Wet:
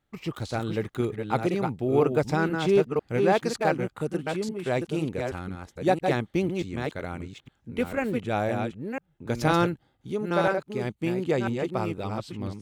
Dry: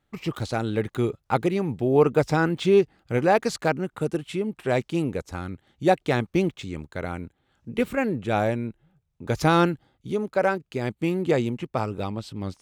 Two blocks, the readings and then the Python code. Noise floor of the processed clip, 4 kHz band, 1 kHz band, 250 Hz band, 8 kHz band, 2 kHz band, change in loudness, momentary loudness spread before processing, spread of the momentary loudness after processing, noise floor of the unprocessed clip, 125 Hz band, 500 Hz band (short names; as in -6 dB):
-70 dBFS, -2.0 dB, -2.0 dB, -2.0 dB, -2.0 dB, -2.0 dB, -2.5 dB, 13 LU, 13 LU, -75 dBFS, -2.5 dB, -2.5 dB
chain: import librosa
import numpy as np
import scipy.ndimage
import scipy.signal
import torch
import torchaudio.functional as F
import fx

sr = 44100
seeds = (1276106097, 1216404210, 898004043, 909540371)

y = fx.reverse_delay(x, sr, ms=499, wet_db=-4.5)
y = y * 10.0 ** (-3.5 / 20.0)